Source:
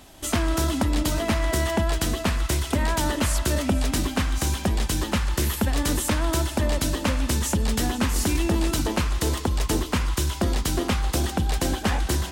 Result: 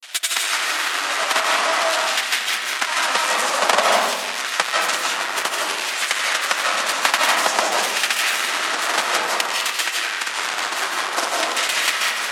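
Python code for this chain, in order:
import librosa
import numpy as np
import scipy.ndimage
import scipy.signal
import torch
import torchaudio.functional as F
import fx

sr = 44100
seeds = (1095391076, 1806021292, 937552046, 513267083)

y = fx.halfwave_hold(x, sr)
y = scipy.signal.sosfilt(scipy.signal.butter(2, 11000.0, 'lowpass', fs=sr, output='sos'), y)
y = fx.peak_eq(y, sr, hz=100.0, db=-14.5, octaves=0.88)
y = fx.transient(y, sr, attack_db=7, sustain_db=-9)
y = fx.filter_lfo_highpass(y, sr, shape='saw_down', hz=0.53, low_hz=830.0, high_hz=2400.0, q=1.1)
y = fx.granulator(y, sr, seeds[0], grain_ms=100.0, per_s=20.0, spray_ms=100.0, spread_st=3)
y = fx.spec_gate(y, sr, threshold_db=-30, keep='strong')
y = y + 10.0 ** (-14.5 / 20.0) * np.pad(y, (int(85 * sr / 1000.0), 0))[:len(y)]
y = fx.rev_freeverb(y, sr, rt60_s=1.1, hf_ratio=0.45, predelay_ms=115, drr_db=-2.0)
y = fx.band_squash(y, sr, depth_pct=40)
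y = y * librosa.db_to_amplitude(4.0)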